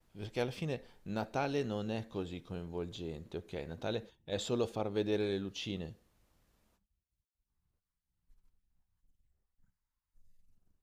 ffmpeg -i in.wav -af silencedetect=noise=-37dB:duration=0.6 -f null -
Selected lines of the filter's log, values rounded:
silence_start: 5.87
silence_end: 10.82 | silence_duration: 4.96